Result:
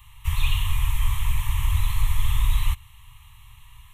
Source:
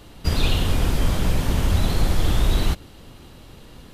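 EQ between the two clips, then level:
elliptic band-stop filter 130–1,000 Hz, stop band 40 dB
high-shelf EQ 12,000 Hz +4.5 dB
phaser with its sweep stopped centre 990 Hz, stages 8
0.0 dB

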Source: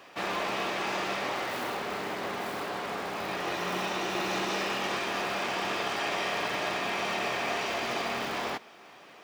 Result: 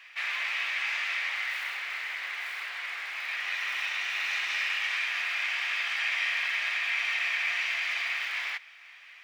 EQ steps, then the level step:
high-pass with resonance 2,100 Hz, resonance Q 3.1
high-shelf EQ 4,800 Hz −7.5 dB
0.0 dB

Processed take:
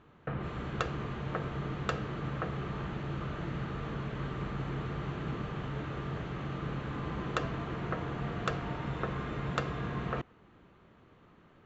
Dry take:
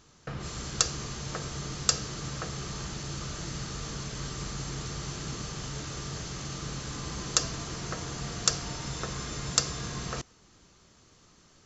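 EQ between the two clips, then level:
high-frequency loss of the air 390 metres
low-shelf EQ 78 Hz −9.5 dB
parametric band 5,000 Hz −14.5 dB 0.61 octaves
+4.0 dB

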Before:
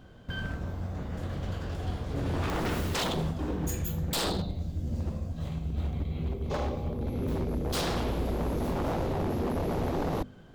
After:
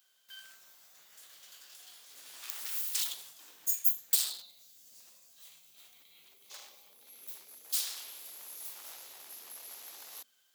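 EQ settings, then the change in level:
first difference
spectral tilt +4.5 dB per octave
high-shelf EQ 5,900 Hz −5 dB
−5.0 dB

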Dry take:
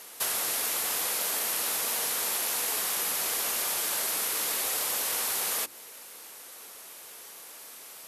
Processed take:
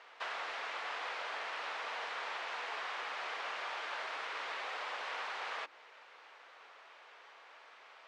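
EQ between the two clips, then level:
band-pass filter 740–2,400 Hz
high-frequency loss of the air 120 metres
0.0 dB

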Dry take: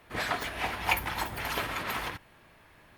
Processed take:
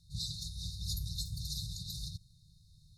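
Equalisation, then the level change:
linear-phase brick-wall band-stop 180–3,600 Hz
low-pass filter 7,500 Hz 12 dB per octave
+3.5 dB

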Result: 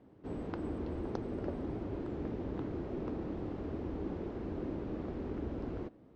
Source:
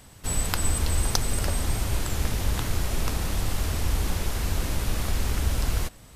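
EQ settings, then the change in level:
resonant band-pass 330 Hz, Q 2.2
high-frequency loss of the air 140 metres
+2.5 dB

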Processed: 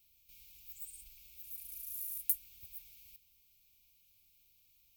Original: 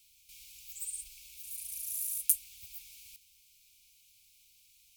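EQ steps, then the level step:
low-shelf EQ 430 Hz −8 dB
flat-topped bell 4,300 Hz −15 dB 2.9 octaves
high-shelf EQ 6,300 Hz −9.5 dB
+8.0 dB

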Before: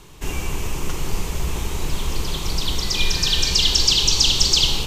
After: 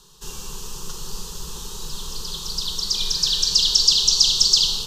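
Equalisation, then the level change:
parametric band 4,300 Hz +13 dB 1.7 octaves
high-shelf EQ 9,300 Hz +5.5 dB
phaser with its sweep stopped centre 440 Hz, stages 8
−8.5 dB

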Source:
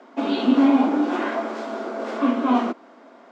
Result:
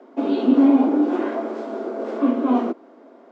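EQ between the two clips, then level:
parametric band 380 Hz +13.5 dB 1.9 octaves
−8.5 dB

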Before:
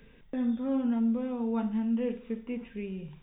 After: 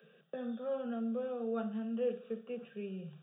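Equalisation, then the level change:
Butterworth high-pass 150 Hz 96 dB per octave
high-shelf EQ 2,800 Hz −8 dB
phaser with its sweep stopped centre 1,400 Hz, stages 8
+1.5 dB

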